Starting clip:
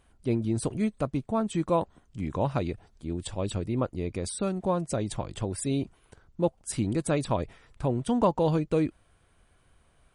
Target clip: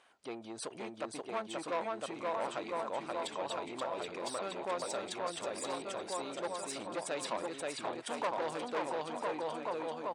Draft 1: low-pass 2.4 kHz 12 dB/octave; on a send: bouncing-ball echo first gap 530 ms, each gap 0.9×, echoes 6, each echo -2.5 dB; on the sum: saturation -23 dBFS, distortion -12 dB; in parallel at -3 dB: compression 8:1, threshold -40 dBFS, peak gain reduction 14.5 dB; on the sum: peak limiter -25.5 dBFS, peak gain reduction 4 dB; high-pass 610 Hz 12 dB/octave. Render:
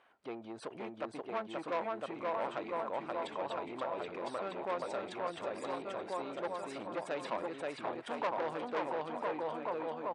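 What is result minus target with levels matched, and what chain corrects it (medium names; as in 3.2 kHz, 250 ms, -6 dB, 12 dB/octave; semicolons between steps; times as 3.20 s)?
8 kHz band -14.5 dB; compression: peak gain reduction -8 dB
low-pass 6.1 kHz 12 dB/octave; on a send: bouncing-ball echo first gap 530 ms, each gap 0.9×, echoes 6, each echo -2.5 dB; on the sum: saturation -23 dBFS, distortion -12 dB; in parallel at -3 dB: compression 8:1, threshold -49 dBFS, peak gain reduction 22.5 dB; on the sum: peak limiter -25.5 dBFS, peak gain reduction 3 dB; high-pass 610 Hz 12 dB/octave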